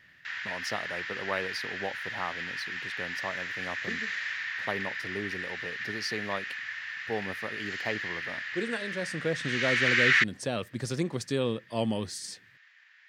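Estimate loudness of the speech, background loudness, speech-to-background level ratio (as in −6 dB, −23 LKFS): −35.5 LKFS, −31.5 LKFS, −4.0 dB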